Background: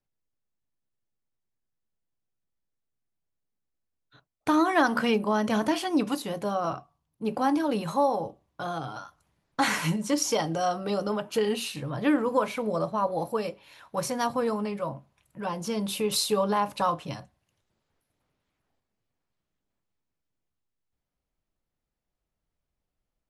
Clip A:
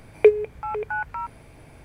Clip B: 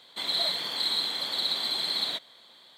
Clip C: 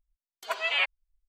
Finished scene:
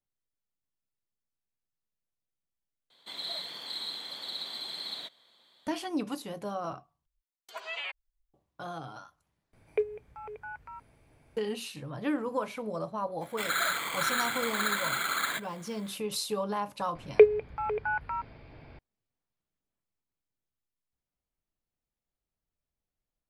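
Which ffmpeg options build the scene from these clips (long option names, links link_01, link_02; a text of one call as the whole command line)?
ffmpeg -i bed.wav -i cue0.wav -i cue1.wav -i cue2.wav -filter_complex "[2:a]asplit=2[link_01][link_02];[1:a]asplit=2[link_03][link_04];[0:a]volume=-7dB[link_05];[3:a]alimiter=limit=-22.5dB:level=0:latency=1:release=67[link_06];[link_02]acrusher=samples=8:mix=1:aa=0.000001[link_07];[link_04]aresample=11025,aresample=44100[link_08];[link_05]asplit=4[link_09][link_10][link_11][link_12];[link_09]atrim=end=2.904[link_13];[link_01]atrim=end=2.77,asetpts=PTS-STARTPTS,volume=-9.5dB[link_14];[link_10]atrim=start=5.666:end=7.064[link_15];[link_06]atrim=end=1.28,asetpts=PTS-STARTPTS,volume=-6dB[link_16];[link_11]atrim=start=8.336:end=9.534[link_17];[link_03]atrim=end=1.84,asetpts=PTS-STARTPTS,volume=-14.5dB[link_18];[link_12]atrim=start=11.366[link_19];[link_07]atrim=end=2.77,asetpts=PTS-STARTPTS,volume=-1.5dB,afade=type=in:duration=0.004:curve=hsin,afade=type=out:start_time=2.766:duration=0.004:curve=hsin,adelay=13210[link_20];[link_08]atrim=end=1.84,asetpts=PTS-STARTPTS,volume=-3dB,afade=type=in:duration=0.004:curve=hsin,afade=type=out:start_time=1.836:duration=0.004:curve=hsin,adelay=16950[link_21];[link_13][link_14]acrossfade=duration=0.004:curve1=hsin:curve2=hsin[link_22];[link_22][link_15]acrossfade=duration=0.004:curve1=hsin:curve2=hsin[link_23];[link_23][link_16]acrossfade=duration=0.004:curve1=hsin:curve2=hsin[link_24];[link_24][link_17]acrossfade=duration=0.004:curve1=hsin:curve2=hsin[link_25];[link_25][link_18]acrossfade=duration=0.004:curve1=hsin:curve2=hsin[link_26];[link_26][link_19]acrossfade=duration=0.004:curve1=hsin:curve2=hsin[link_27];[link_27][link_20][link_21]amix=inputs=3:normalize=0" out.wav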